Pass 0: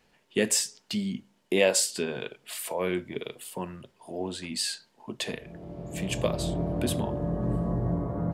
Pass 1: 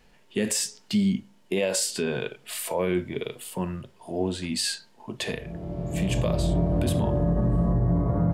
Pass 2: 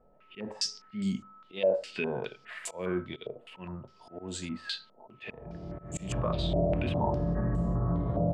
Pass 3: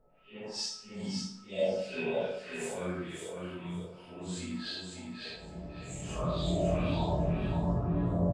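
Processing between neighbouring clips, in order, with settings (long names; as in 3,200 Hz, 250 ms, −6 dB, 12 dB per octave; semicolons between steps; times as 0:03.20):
harmonic and percussive parts rebalanced harmonic +7 dB; low-shelf EQ 81 Hz +11.5 dB; brickwall limiter −15.5 dBFS, peak gain reduction 10.5 dB
volume swells 169 ms; steady tone 1,300 Hz −56 dBFS; low-pass on a step sequencer 4.9 Hz 620–7,300 Hz; level −6.5 dB
random phases in long frames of 200 ms; on a send: repeating echo 555 ms, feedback 18%, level −5 dB; on the sum: dense smooth reverb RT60 0.74 s, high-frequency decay 0.75×, DRR 5 dB; level −3.5 dB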